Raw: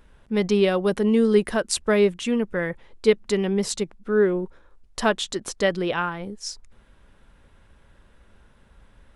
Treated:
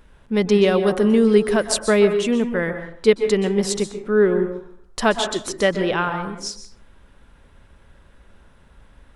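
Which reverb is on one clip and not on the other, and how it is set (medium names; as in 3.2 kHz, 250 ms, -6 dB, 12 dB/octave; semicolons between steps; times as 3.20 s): plate-style reverb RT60 0.6 s, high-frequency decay 0.45×, pre-delay 115 ms, DRR 8 dB; trim +3 dB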